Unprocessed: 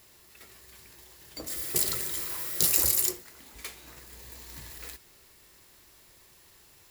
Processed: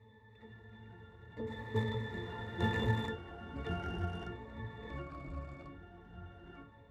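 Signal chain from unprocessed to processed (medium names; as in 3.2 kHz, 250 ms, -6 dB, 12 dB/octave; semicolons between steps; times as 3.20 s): median filter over 9 samples; pitch-class resonator A, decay 0.2 s; ever faster or slower copies 383 ms, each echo -4 st, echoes 2, each echo -6 dB; trim +15.5 dB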